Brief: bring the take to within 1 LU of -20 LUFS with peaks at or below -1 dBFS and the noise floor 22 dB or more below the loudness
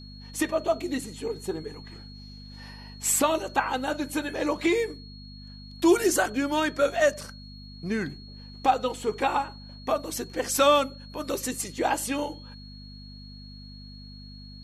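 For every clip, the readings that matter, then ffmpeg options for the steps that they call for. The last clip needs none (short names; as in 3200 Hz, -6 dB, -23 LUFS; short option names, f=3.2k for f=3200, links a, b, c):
hum 50 Hz; harmonics up to 250 Hz; hum level -42 dBFS; steady tone 4300 Hz; tone level -48 dBFS; loudness -27.0 LUFS; peak -10.0 dBFS; loudness target -20.0 LUFS
-> -af "bandreject=f=50:t=h:w=4,bandreject=f=100:t=h:w=4,bandreject=f=150:t=h:w=4,bandreject=f=200:t=h:w=4,bandreject=f=250:t=h:w=4"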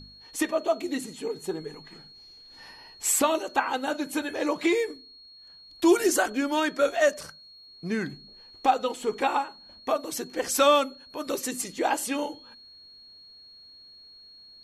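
hum none; steady tone 4300 Hz; tone level -48 dBFS
-> -af "bandreject=f=4.3k:w=30"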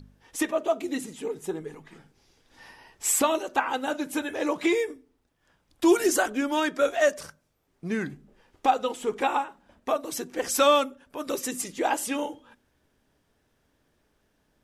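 steady tone none; loudness -26.5 LUFS; peak -10.0 dBFS; loudness target -20.0 LUFS
-> -af "volume=6.5dB"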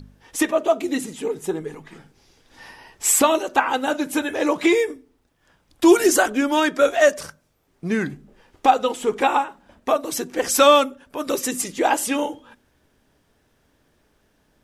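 loudness -20.5 LUFS; peak -3.5 dBFS; noise floor -65 dBFS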